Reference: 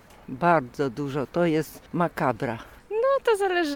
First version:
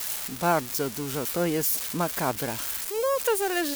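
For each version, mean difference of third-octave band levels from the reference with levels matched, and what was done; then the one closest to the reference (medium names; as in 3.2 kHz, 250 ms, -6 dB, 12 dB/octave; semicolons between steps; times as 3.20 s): 10.0 dB: zero-crossing glitches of -17.5 dBFS; trim -3.5 dB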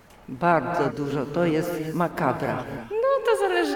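4.0 dB: gated-style reverb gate 340 ms rising, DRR 5.5 dB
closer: second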